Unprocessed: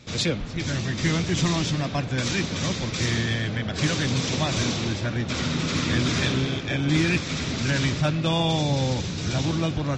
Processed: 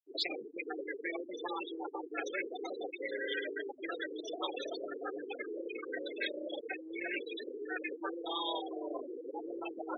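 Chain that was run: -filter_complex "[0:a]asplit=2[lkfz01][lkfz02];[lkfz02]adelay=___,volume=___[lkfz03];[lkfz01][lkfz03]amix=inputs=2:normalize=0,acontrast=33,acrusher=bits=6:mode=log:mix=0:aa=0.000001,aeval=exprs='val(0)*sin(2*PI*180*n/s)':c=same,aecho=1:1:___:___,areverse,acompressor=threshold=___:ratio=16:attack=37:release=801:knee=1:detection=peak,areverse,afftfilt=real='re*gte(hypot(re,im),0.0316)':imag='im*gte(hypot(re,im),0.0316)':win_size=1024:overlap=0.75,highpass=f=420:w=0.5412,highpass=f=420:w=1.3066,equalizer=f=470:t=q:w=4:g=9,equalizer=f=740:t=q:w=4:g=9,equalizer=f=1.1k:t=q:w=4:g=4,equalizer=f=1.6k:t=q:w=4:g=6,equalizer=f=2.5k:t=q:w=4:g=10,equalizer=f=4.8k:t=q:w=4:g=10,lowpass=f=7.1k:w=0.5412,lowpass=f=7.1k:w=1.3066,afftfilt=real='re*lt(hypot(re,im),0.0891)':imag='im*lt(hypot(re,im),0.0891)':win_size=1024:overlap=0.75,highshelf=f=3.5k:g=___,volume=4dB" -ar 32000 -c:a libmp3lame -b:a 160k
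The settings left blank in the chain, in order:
14, -12.5dB, 673, 0.0841, -32dB, 2.5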